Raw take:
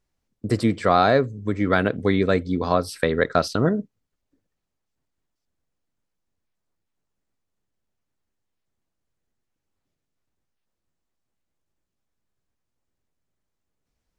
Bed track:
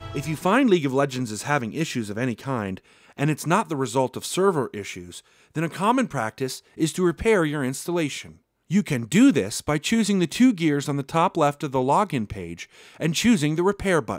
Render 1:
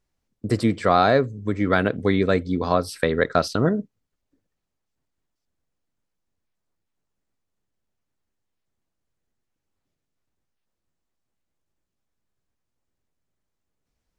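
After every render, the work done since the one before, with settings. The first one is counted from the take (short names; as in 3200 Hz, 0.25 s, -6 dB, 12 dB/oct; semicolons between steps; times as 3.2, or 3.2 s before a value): nothing audible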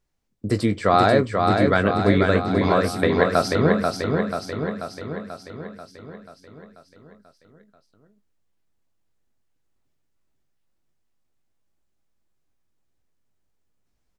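doubler 20 ms -10 dB; feedback echo 0.487 s, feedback 60%, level -4 dB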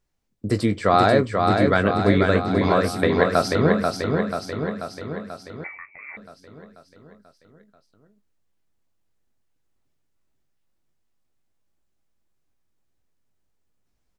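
5.64–6.17 inverted band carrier 2500 Hz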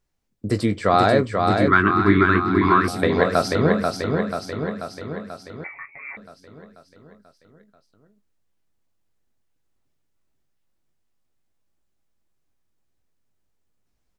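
1.68–2.88 EQ curve 250 Hz 0 dB, 360 Hz +9 dB, 520 Hz -24 dB, 760 Hz -8 dB, 1100 Hz +10 dB, 7600 Hz -12 dB; 5.73–6.15 comb 7.2 ms, depth 98%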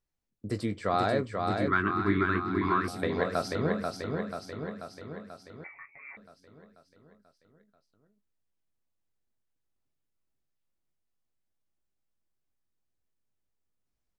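gain -10.5 dB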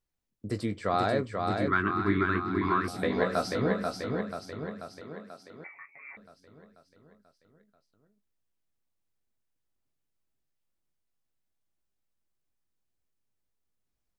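2.93–4.21 doubler 16 ms -4 dB; 5.01–6.11 HPF 170 Hz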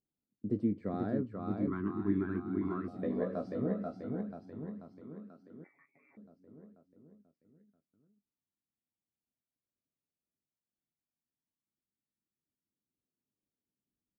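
band-pass 250 Hz, Q 1.6; phaser 0.15 Hz, delay 1.8 ms, feedback 39%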